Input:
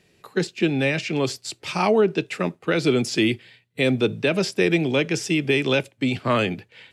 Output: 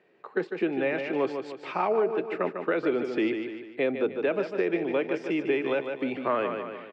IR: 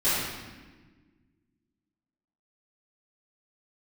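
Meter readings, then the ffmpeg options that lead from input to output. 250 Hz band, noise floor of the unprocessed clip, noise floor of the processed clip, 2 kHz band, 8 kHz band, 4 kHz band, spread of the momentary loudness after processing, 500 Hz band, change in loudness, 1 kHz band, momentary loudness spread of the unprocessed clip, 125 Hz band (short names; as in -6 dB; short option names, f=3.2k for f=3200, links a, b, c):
-7.0 dB, -63 dBFS, -52 dBFS, -8.0 dB, under -25 dB, -16.5 dB, 6 LU, -3.5 dB, -6.0 dB, -3.0 dB, 7 LU, -18.0 dB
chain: -filter_complex "[0:a]aecho=1:1:149|298|447|596|745:0.398|0.163|0.0669|0.0274|0.0112,asplit=2[a][b];[b]acompressor=threshold=-28dB:ratio=6,volume=-3dB[c];[a][c]amix=inputs=2:normalize=0,asuperpass=centerf=750:order=4:qfactor=0.53,alimiter=limit=-12.5dB:level=0:latency=1:release=370,volume=-3.5dB"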